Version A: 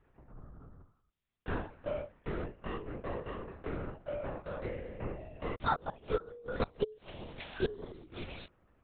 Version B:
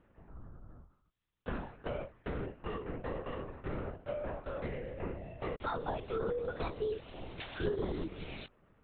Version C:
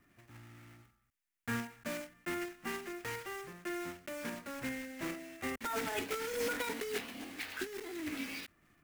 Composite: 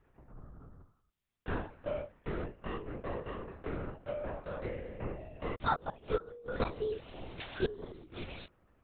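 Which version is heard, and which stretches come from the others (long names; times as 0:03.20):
A
0:04.03–0:04.45: punch in from B
0:06.65–0:07.60: punch in from B
not used: C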